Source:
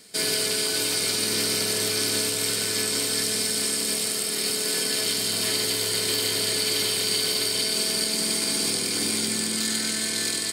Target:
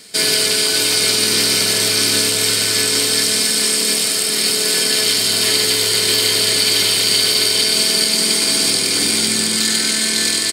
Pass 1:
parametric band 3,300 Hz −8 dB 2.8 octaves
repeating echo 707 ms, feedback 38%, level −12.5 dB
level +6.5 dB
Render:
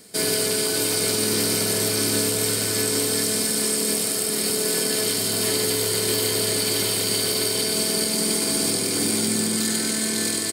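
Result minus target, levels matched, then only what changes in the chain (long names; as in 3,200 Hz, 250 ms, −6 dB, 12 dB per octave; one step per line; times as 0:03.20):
4,000 Hz band −3.5 dB
change: parametric band 3,300 Hz +4 dB 2.8 octaves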